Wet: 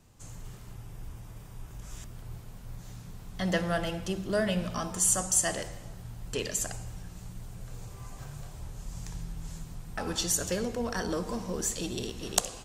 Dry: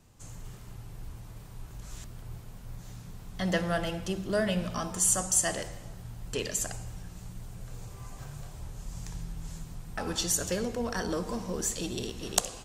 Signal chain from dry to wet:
0:00.73–0:02.14: notch filter 4,200 Hz, Q 8.6

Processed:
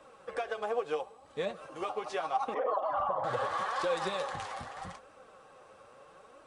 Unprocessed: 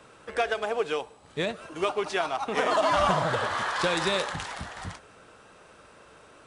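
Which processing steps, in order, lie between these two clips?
0:02.54–0:03.24: spectral envelope exaggerated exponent 2
downward compressor, threshold −26 dBFS, peak gain reduction 7 dB
flanger 0.78 Hz, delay 3 ms, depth 6.7 ms, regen +35%
hollow resonant body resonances 540/780/1,100 Hz, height 12 dB, ringing for 35 ms
level −4.5 dB

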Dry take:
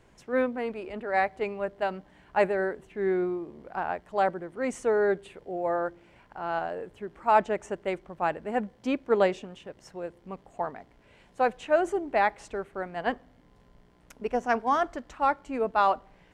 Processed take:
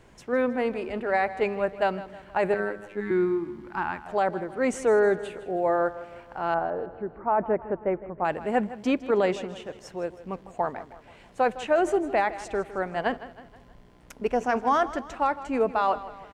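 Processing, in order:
0:02.54–0:03.11: phases set to zero 103 Hz
0:06.54–0:08.25: Gaussian smoothing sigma 5.3 samples
brickwall limiter −19.5 dBFS, peak gain reduction 9 dB
repeating echo 159 ms, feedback 49%, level −15.5 dB
0:03.00–0:04.06: gain on a spectral selection 370–800 Hz −15 dB
level +5 dB

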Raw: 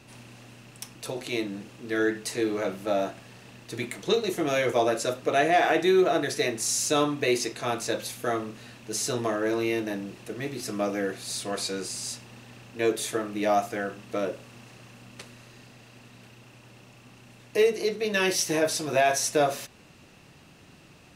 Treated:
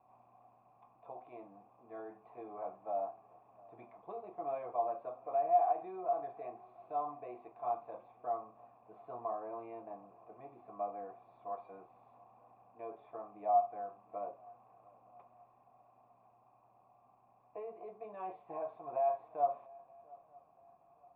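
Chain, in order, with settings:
brickwall limiter −16.5 dBFS, peak gain reduction 6 dB
formant resonators in series a
feedback echo with a long and a short gap by turns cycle 923 ms, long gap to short 3 to 1, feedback 35%, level −23.5 dB
level +1 dB

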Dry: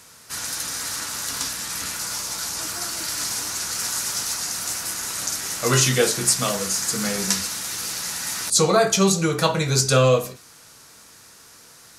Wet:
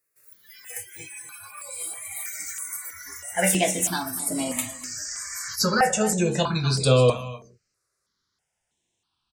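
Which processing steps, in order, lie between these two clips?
gliding playback speed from 189% → 68%
noise reduction from a noise print of the clip's start 27 dB
on a send: single-tap delay 248 ms −14.5 dB
on the sum: step-sequenced phaser 3.1 Hz 860–6,100 Hz

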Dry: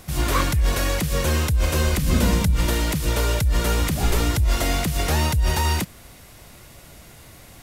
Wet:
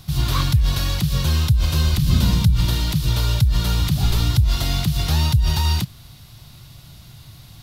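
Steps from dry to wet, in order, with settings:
graphic EQ with 10 bands 125 Hz +11 dB, 250 Hz −4 dB, 500 Hz −11 dB, 2,000 Hz −8 dB, 4,000 Hz +9 dB, 8,000 Hz −7 dB

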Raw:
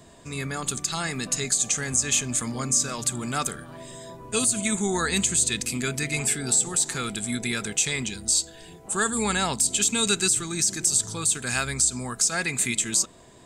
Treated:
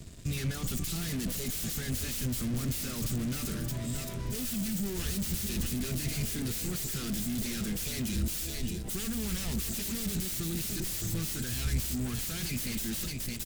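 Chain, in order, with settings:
phase distortion by the signal itself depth 0.52 ms
noise reduction from a noise print of the clip's start 7 dB
repeating echo 618 ms, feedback 16%, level −15.5 dB
fuzz pedal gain 48 dB, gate −58 dBFS
guitar amp tone stack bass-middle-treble 10-0-1

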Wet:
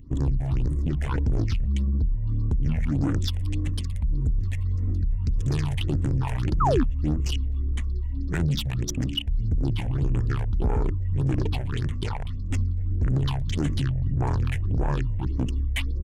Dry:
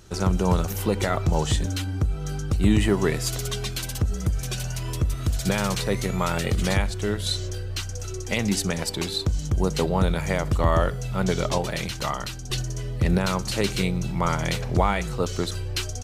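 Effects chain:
adaptive Wiener filter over 41 samples
parametric band 810 Hz −9 dB 0.96 octaves
in parallel at −1 dB: compressor whose output falls as the input rises −26 dBFS, ratio −0.5
on the sum: soft clipping −18.5 dBFS, distortion −13 dB
pitch shifter −5.5 semitones
all-pass phaser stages 6, 1.7 Hz, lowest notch 310–4,600 Hz
sound drawn into the spectrogram fall, 0:06.60–0:06.84, 220–1,400 Hz −22 dBFS

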